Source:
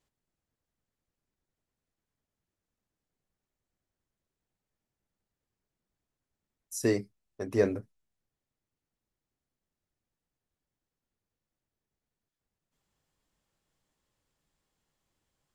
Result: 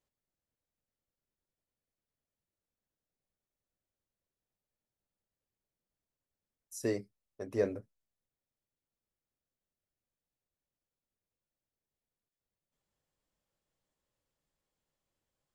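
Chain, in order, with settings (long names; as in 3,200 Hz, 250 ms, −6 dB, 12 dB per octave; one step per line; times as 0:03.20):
parametric band 550 Hz +5.5 dB 0.52 octaves
level −7.5 dB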